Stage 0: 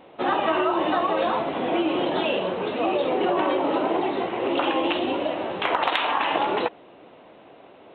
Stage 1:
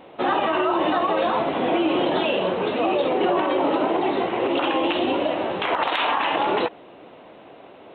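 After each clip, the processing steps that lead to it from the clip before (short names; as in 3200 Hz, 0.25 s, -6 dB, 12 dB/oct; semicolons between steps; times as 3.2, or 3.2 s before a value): limiter -16 dBFS, peak gain reduction 6.5 dB; gain +3.5 dB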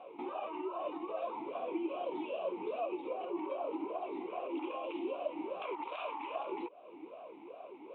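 compressor 4:1, threshold -33 dBFS, peak gain reduction 13 dB; vowel sweep a-u 2.5 Hz; gain +3.5 dB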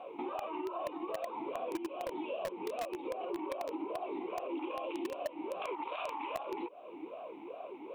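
in parallel at -6 dB: bit-crush 5-bit; on the sum: compressor 5:1, threshold -39 dBFS, peak gain reduction 12 dB; gain +4 dB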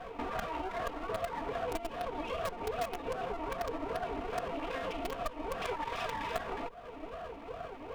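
minimum comb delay 4.3 ms; gain +4 dB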